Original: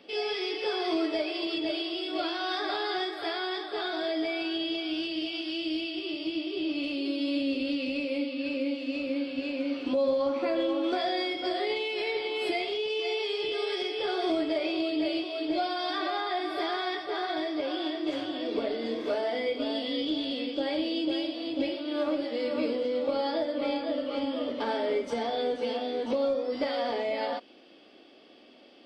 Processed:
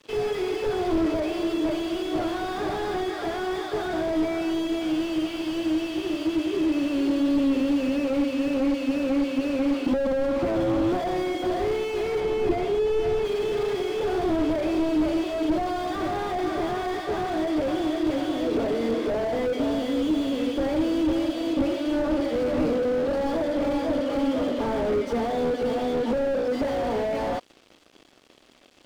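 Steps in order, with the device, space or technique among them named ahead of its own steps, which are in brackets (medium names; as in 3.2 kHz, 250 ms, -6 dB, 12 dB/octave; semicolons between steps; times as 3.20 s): early transistor amplifier (crossover distortion -53.5 dBFS; slew-rate limiter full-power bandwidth 13 Hz); 12.20–13.25 s: tilt EQ -1.5 dB/octave; trim +9 dB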